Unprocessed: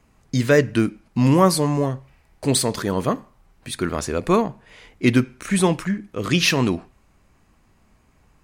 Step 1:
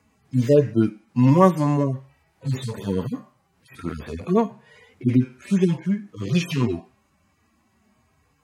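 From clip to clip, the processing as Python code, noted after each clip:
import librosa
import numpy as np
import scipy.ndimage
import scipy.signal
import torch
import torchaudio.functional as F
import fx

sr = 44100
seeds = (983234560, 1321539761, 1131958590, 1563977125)

y = fx.hpss_only(x, sr, part='harmonic')
y = scipy.signal.sosfilt(scipy.signal.butter(4, 81.0, 'highpass', fs=sr, output='sos'), y)
y = y * librosa.db_to_amplitude(1.0)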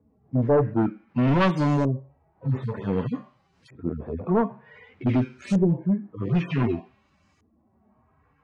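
y = np.clip(x, -10.0 ** (-17.0 / 20.0), 10.0 ** (-17.0 / 20.0))
y = fx.filter_lfo_lowpass(y, sr, shape='saw_up', hz=0.54, low_hz=420.0, high_hz=6500.0, q=1.3)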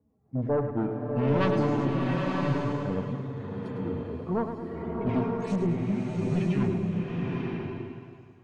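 y = fx.echo_feedback(x, sr, ms=106, feedback_pct=51, wet_db=-9.0)
y = fx.rev_bloom(y, sr, seeds[0], attack_ms=950, drr_db=-1.5)
y = y * librosa.db_to_amplitude(-7.0)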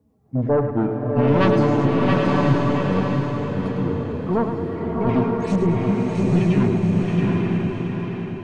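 y = fx.echo_feedback(x, sr, ms=673, feedback_pct=32, wet_db=-5.0)
y = y * librosa.db_to_amplitude(7.5)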